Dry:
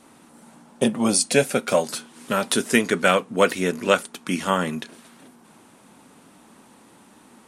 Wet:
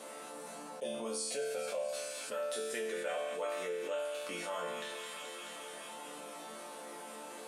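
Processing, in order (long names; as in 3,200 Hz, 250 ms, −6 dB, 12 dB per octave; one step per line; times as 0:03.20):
high-pass filter 390 Hz 12 dB per octave
parametric band 540 Hz +11 dB 0.53 octaves
resonators tuned to a chord D3 minor, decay 0.67 s
delay with a high-pass on its return 215 ms, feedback 69%, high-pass 1,900 Hz, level −11.5 dB
envelope flattener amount 70%
level −5.5 dB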